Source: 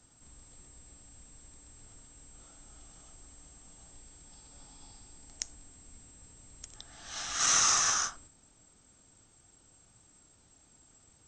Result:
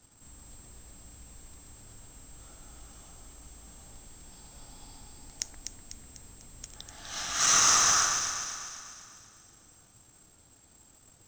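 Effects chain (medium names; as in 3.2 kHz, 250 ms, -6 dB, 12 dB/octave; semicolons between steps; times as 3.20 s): in parallel at -9 dB: companded quantiser 4-bit; on the sum: echo whose repeats swap between lows and highs 124 ms, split 1.6 kHz, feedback 71%, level -3 dB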